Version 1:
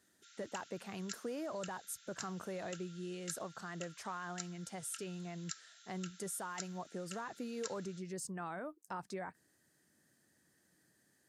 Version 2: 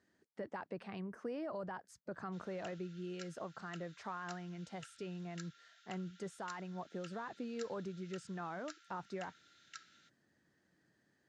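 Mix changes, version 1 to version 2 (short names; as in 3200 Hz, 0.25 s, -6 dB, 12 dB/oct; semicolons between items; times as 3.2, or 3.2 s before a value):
background: entry +2.10 s; master: add air absorption 150 m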